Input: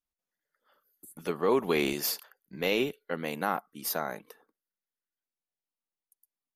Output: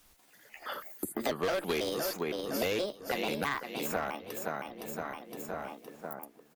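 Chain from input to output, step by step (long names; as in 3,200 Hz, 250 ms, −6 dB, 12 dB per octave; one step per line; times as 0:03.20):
pitch shifter gated in a rhythm +6 semitones, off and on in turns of 164 ms
on a send: repeating echo 514 ms, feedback 26%, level −11 dB
on the sum: asymmetric clip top −25.5 dBFS
slap from a distant wall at 270 metres, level −24 dB
multiband upward and downward compressor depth 100%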